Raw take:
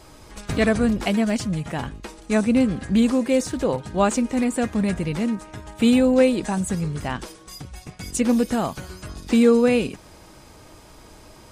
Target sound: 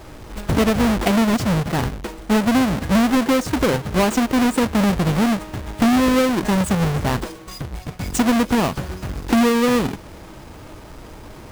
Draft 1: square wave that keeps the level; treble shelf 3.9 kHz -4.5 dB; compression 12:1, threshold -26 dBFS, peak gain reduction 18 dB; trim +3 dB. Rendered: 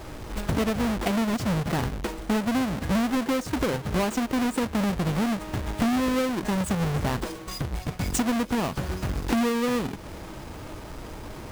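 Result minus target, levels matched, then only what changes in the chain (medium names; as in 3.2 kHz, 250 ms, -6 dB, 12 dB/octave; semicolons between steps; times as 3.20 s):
compression: peak gain reduction +8 dB
change: compression 12:1, threshold -17 dBFS, peak gain reduction 9.5 dB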